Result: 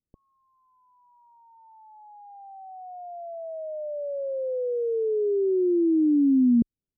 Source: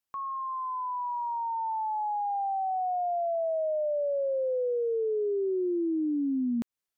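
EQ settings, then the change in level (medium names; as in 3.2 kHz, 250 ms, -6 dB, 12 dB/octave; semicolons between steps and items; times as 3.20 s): Gaussian low-pass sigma 21 samples; tilt EQ -1.5 dB/octave; +9.0 dB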